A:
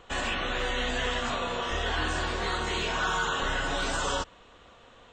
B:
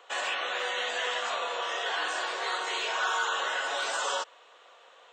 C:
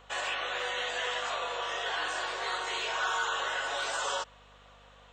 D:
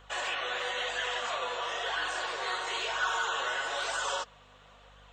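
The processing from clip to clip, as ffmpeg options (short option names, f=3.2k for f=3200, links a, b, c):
-af "highpass=f=480:w=0.5412,highpass=f=480:w=1.3066"
-af "aeval=exprs='val(0)+0.00126*(sin(2*PI*50*n/s)+sin(2*PI*2*50*n/s)/2+sin(2*PI*3*50*n/s)/3+sin(2*PI*4*50*n/s)/4+sin(2*PI*5*50*n/s)/5)':c=same,volume=-2dB"
-af "flanger=delay=0.6:depth=7.5:regen=54:speed=1:shape=sinusoidal,volume=4dB"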